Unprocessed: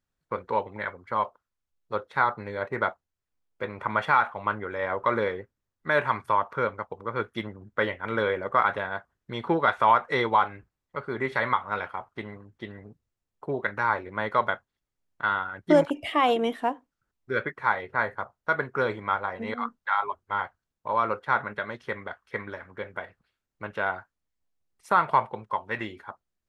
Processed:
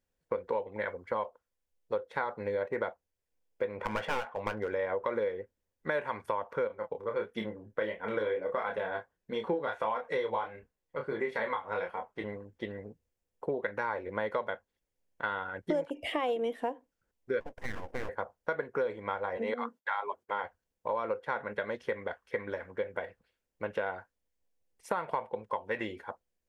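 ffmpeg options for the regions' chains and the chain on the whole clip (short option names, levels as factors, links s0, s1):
-filter_complex "[0:a]asettb=1/sr,asplit=3[s0][s1][s2];[s0]atrim=end=3.764[s3];[s1]atrim=start=3.76:end=4.73,asetpts=PTS-STARTPTS,afade=t=in:d=0.004:c=qsin,afade=t=out:st=0.966:d=0.004:c=qsin,adynamicsmooth=sensitivity=7:basefreq=6100,aeval=exprs='clip(val(0),-1,0.0398)':c=same,asplit=2[s4][s5];[s5]adelay=18,volume=0.237[s6];[s4][s6]amix=inputs=2:normalize=0,atrim=end_sample=42777[s7];[s2]atrim=start=4.726[s8];[s3][s7]acrossfade=d=0.004:c1=hsin:c2=qsin[s9];[s9][s8]acrossfade=d=0.004:c1=qsin:c2=hsin,asettb=1/sr,asplit=3[s10][s11][s12];[s10]atrim=end=6.674[s13];[s11]atrim=start=6.67:end=12.24,asetpts=PTS-STARTPTS,afade=t=in:d=0.004:c=qsin,afade=t=out:st=5.566:d=0.004:c=qsin,flanger=delay=3.8:depth=4.2:regen=36:speed=1.5:shape=triangular,asplit=2[s14][s15];[s15]adelay=28,volume=0.562[s16];[s14][s16]amix=inputs=2:normalize=0,atrim=end_sample=245637[s17];[s12]atrim=start=12.236[s18];[s13][s17]acrossfade=d=0.004:c1=hsin:c2=qsin[s19];[s19][s18]acrossfade=d=0.004:c1=qsin:c2=hsin,asettb=1/sr,asplit=3[s20][s21][s22];[s20]atrim=end=17.404[s23];[s21]atrim=start=17.4:end=18.09,asetpts=PTS-STARTPTS,afade=t=in:d=0.004:c=qsin,afade=t=out:st=0.686:d=0.004:c=qsin,asuperstop=centerf=2500:order=20:qfactor=0.66,acompressor=threshold=0.0398:ratio=5:attack=3.2:release=140:knee=1:detection=peak,aeval=exprs='abs(val(0))':c=same[s24];[s22]atrim=start=18.086[s25];[s23][s24]acrossfade=d=0.004:c1=hsin:c2=qsin[s26];[s26][s25]acrossfade=d=0.004:c1=qsin:c2=hsin,asettb=1/sr,asplit=3[s27][s28][s29];[s27]atrim=end=19.374[s30];[s28]atrim=start=19.37:end=20.44,asetpts=PTS-STARTPTS,afade=t=in:d=0.004:c=qsin,afade=t=out:st=1.066:d=0.004:c=qsin,agate=range=0.0224:threshold=0.001:ratio=3:release=100:detection=peak,highpass=200,acompressor=mode=upward:threshold=0.0112:ratio=2.5:attack=3.2:release=140:knee=2.83:detection=peak[s31];[s29]atrim=start=20.436[s32];[s30][s31]acrossfade=d=0.004:c1=hsin:c2=qsin[s33];[s33][s32]acrossfade=d=0.004:c1=qsin:c2=hsin,equalizer=f=125:t=o:w=0.33:g=-10,equalizer=f=500:t=o:w=0.33:g=10,equalizer=f=1250:t=o:w=0.33:g=-8,equalizer=f=4000:t=o:w=0.33:g=-4,acompressor=threshold=0.0355:ratio=6"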